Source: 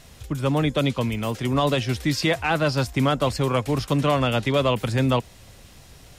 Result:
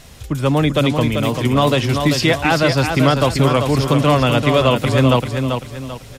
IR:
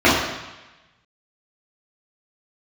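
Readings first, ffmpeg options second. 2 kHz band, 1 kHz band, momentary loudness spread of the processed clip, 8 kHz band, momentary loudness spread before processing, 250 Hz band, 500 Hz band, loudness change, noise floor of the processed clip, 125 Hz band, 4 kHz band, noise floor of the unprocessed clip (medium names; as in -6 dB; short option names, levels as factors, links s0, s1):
+7.0 dB, +7.0 dB, 7 LU, +7.0 dB, 4 LU, +7.5 dB, +7.0 dB, +7.0 dB, -38 dBFS, +7.5 dB, +7.0 dB, -48 dBFS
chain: -af "aecho=1:1:390|780|1170|1560:0.501|0.175|0.0614|0.0215,volume=2"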